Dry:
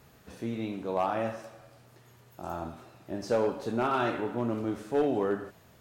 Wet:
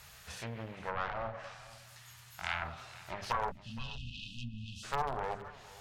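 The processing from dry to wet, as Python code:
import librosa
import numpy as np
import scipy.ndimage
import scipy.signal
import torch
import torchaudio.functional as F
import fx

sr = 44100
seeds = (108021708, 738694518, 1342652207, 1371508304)

p1 = fx.self_delay(x, sr, depth_ms=0.58)
p2 = fx.hum_notches(p1, sr, base_hz=50, count=10)
p3 = fx.spec_erase(p2, sr, start_s=3.51, length_s=1.32, low_hz=300.0, high_hz=2500.0)
p4 = fx.env_lowpass_down(p3, sr, base_hz=710.0, full_db=-29.5)
p5 = fx.peak_eq(p4, sr, hz=490.0, db=-10.0, octaves=0.8, at=(1.51, 2.62), fade=0.02)
p6 = np.clip(p5, -10.0 ** (-24.0 / 20.0), 10.0 ** (-24.0 / 20.0))
p7 = fx.tone_stack(p6, sr, knobs='10-0-10')
p8 = p7 + fx.echo_single(p7, sr, ms=467, db=-19.0, dry=0)
y = p8 * librosa.db_to_amplitude(12.0)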